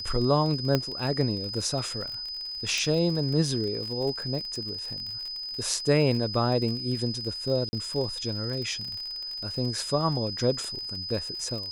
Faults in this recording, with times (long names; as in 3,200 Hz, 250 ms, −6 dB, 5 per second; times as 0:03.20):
surface crackle 43 per second −33 dBFS
whistle 5,000 Hz −33 dBFS
0:00.75: click −10 dBFS
0:02.78: click
0:07.69–0:07.73: drop-out 40 ms